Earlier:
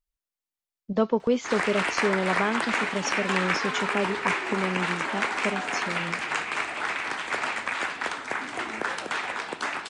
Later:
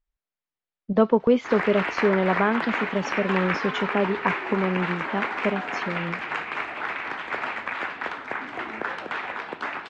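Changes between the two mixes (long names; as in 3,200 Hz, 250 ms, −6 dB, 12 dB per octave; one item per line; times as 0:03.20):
speech +4.5 dB
master: add low-pass filter 2,700 Hz 12 dB per octave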